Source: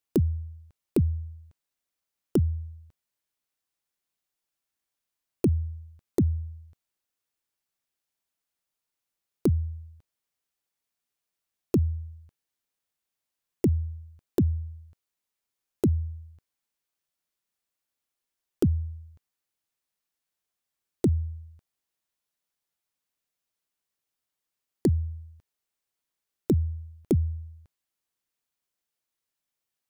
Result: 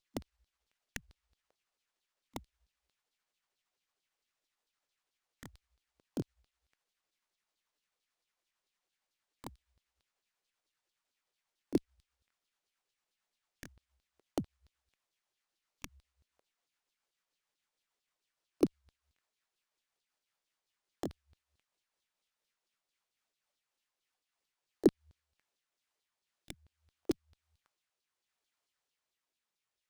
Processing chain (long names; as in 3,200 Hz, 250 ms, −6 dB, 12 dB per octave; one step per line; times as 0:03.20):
pitch glide at a constant tempo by −6 semitones ending unshifted
auto-filter high-pass saw down 4.5 Hz 300–4,500 Hz
windowed peak hold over 3 samples